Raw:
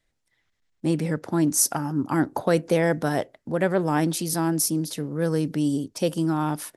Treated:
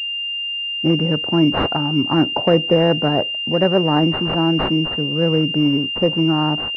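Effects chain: class-D stage that switches slowly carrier 2.8 kHz; trim +6.5 dB

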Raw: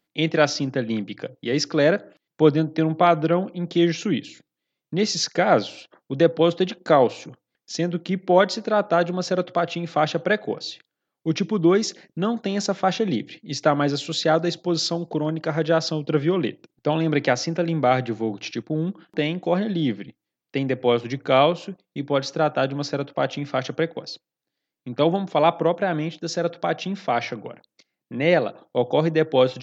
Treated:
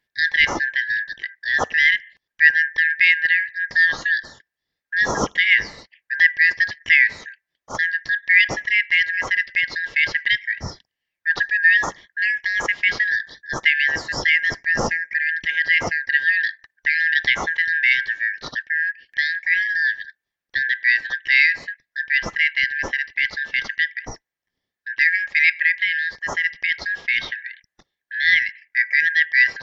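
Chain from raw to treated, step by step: four frequency bands reordered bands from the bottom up 4123; treble shelf 2.5 kHz -10 dB; trim +5.5 dB

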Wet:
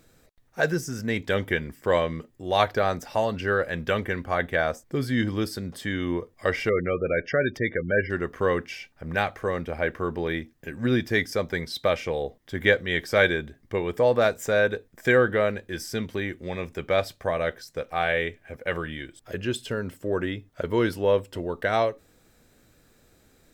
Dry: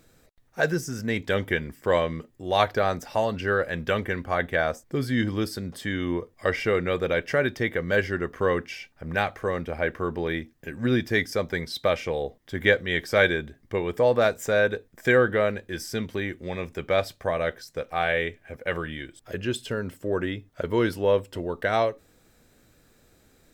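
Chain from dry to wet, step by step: 6.69–8.10 s: spectral gate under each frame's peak -20 dB strong

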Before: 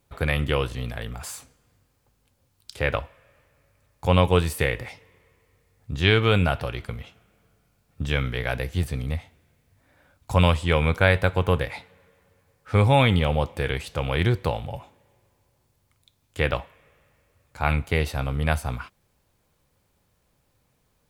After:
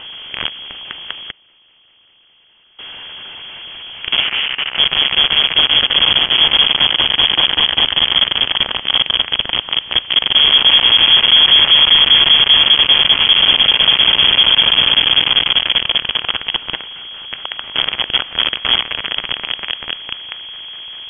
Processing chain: spectral blur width 749 ms; in parallel at +3 dB: compression 8:1, threshold -41 dBFS, peak gain reduction 20.5 dB; 14.61–16.44 s: on the sum: graphic EQ with 31 bands 315 Hz -8 dB, 500 Hz -7 dB, 2 kHz +10 dB; frequency shift -16 Hz; echo with a slow build-up 196 ms, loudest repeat 5, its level -5.5 dB; on a send at -4 dB: reverberation RT60 0.50 s, pre-delay 3 ms; on the sum: companded quantiser 2-bit; 1.31–2.79 s: integer overflow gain 31.5 dB; 4.20–4.78 s: three-band isolator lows -15 dB, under 150 Hz, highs -14 dB, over 2.2 kHz; frequency inversion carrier 3.3 kHz; trim -7 dB

